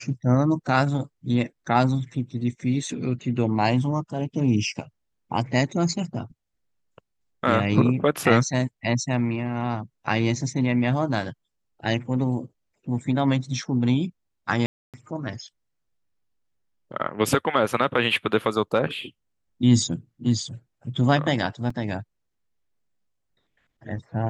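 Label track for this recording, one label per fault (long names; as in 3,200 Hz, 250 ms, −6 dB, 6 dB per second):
14.660000	14.940000	drop-out 277 ms
21.700000	21.700000	drop-out 4 ms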